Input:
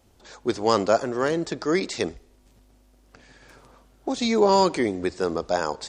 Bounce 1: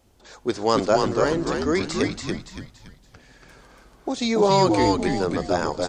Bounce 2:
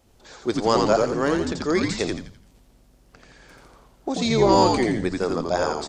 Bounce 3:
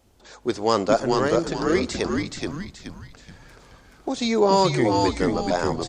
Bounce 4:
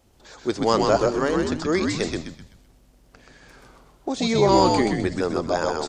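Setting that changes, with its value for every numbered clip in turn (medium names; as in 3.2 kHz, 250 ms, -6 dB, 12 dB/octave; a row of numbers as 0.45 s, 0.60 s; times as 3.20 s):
frequency-shifting echo, time: 284 ms, 85 ms, 426 ms, 128 ms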